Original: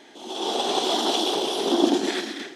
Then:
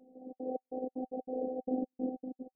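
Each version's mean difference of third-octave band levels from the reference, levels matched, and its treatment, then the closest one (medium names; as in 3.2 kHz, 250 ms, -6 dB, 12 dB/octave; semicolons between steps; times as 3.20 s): 20.5 dB: peak limiter -15 dBFS, peak gain reduction 9.5 dB; trance gate "xxxx.xx..xx.x.x." 188 bpm -60 dB; rippled Chebyshev low-pass 700 Hz, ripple 6 dB; robot voice 256 Hz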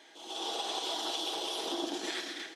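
4.0 dB: high-pass 830 Hz 6 dB/octave; on a send: delay 427 ms -20.5 dB; on the sum: compression, threshold -27 dBFS, peak gain reduction 7 dB; comb 6.2 ms, depth 44%; trim -5.5 dB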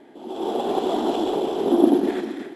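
7.5 dB: on a send: thinning echo 149 ms, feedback 58%, level -13 dB; on the sum: careless resampling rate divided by 4×, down none, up zero stuff; low-pass 3 kHz 12 dB/octave; tilt shelf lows +8 dB; trim -2 dB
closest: second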